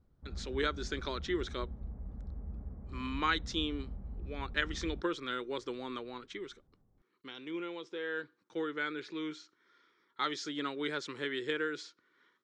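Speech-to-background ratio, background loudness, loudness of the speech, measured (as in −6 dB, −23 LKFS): 8.5 dB, −46.0 LKFS, −37.5 LKFS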